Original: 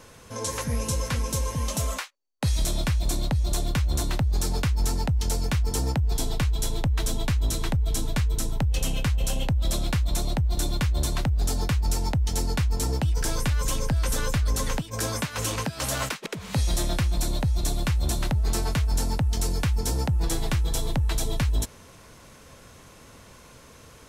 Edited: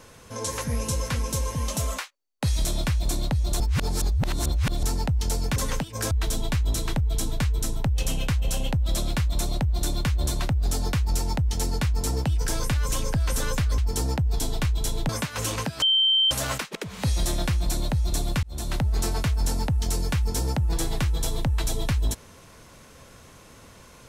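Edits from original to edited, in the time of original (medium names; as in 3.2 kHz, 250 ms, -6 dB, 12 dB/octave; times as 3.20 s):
3.60–4.83 s: reverse
5.56–6.87 s: swap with 14.54–15.09 s
15.82 s: add tone 3.12 kHz -17 dBFS 0.49 s
17.94–18.27 s: fade in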